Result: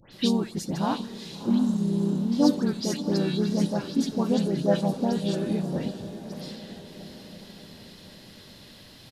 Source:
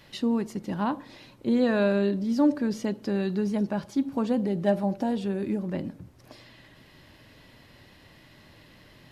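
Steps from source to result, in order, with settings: spectral repair 1.51–2.13, 390–5300 Hz after; dispersion highs, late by 0.125 s, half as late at 2300 Hz; on a send: diffused feedback echo 0.681 s, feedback 54%, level -12 dB; on the sum: harmoniser -3 st -4 dB; resonant high shelf 3000 Hz +8 dB, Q 1.5

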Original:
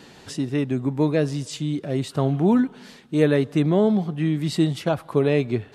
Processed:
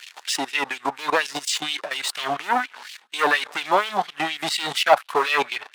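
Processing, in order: sample leveller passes 3; level quantiser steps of 15 dB; LFO high-pass sine 4.2 Hz 810–2900 Hz; gain +4.5 dB

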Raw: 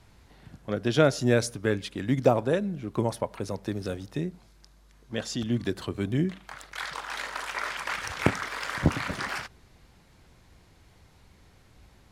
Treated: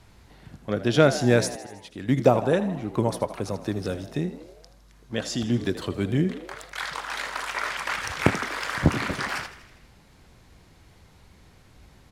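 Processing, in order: 1.55–2.09 auto swell 0.676 s; frequency-shifting echo 80 ms, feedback 60%, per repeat +64 Hz, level -14.5 dB; gain +3 dB

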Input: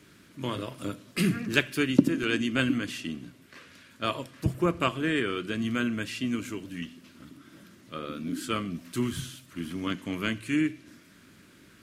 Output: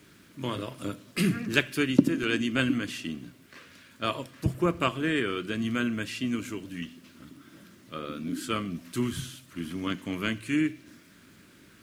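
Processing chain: bit-crush 11-bit

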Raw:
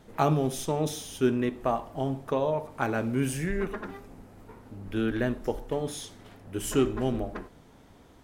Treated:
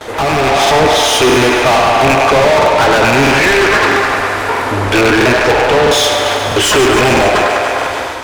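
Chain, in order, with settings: rattling part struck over -28 dBFS, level -17 dBFS; treble ducked by the level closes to 1200 Hz, closed at -22 dBFS; bell 190 Hz -14.5 dB 0.78 oct; gate with hold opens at -51 dBFS; on a send: band-limited delay 0.101 s, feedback 71%, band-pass 1200 Hz, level -9 dB; on the sum: overdrive pedal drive 37 dB, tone 4800 Hz, clips at -11.5 dBFS; in parallel at -5.5 dB: hard clip -20 dBFS, distortion -15 dB; on the sum: bell 77 Hz +5 dB 1.5 oct; thinning echo 0.143 s, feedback 78%, high-pass 320 Hz, level -9 dB; AGC gain up to 7 dB; crackling interface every 0.65 s, samples 2048, repeat, from 0.62; gain +1 dB

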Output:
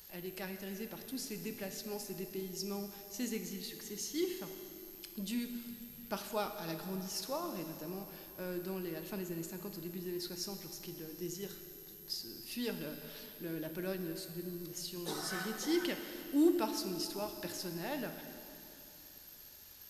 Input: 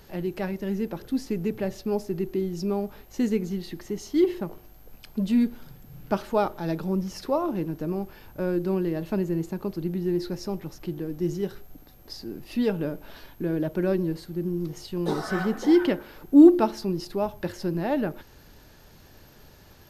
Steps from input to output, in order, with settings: pre-emphasis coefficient 0.9; plate-style reverb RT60 3.1 s, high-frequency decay 1×, DRR 6 dB; gain +3.5 dB

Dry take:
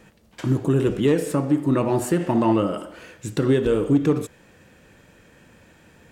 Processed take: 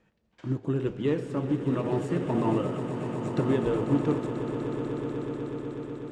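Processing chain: air absorption 98 m; swelling echo 0.123 s, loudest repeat 8, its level -11 dB; upward expander 1.5:1, over -33 dBFS; gain -6 dB

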